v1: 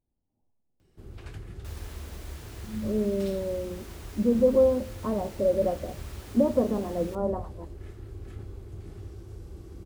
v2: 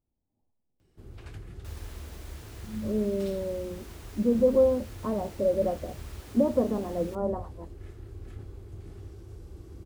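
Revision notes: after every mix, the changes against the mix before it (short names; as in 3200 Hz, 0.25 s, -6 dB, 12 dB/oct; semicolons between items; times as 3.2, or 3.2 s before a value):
reverb: off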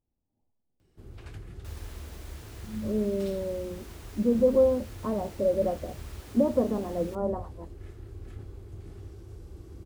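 none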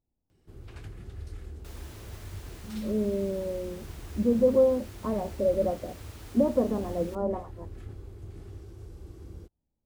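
first sound: entry -0.50 s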